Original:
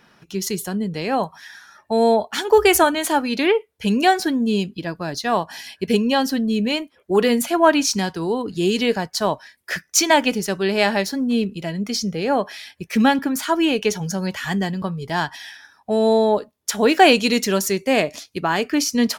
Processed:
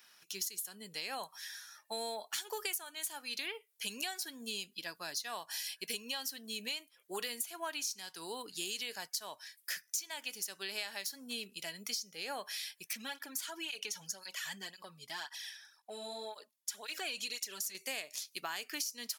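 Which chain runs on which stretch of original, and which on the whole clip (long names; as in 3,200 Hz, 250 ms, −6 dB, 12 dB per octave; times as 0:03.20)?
0:12.93–0:17.75: high-shelf EQ 9,300 Hz −8 dB + downward compressor 2 to 1, threshold −23 dBFS + through-zero flanger with one copy inverted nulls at 1.9 Hz, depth 2.8 ms
whole clip: first difference; downward compressor 12 to 1, threshold −38 dBFS; level +2.5 dB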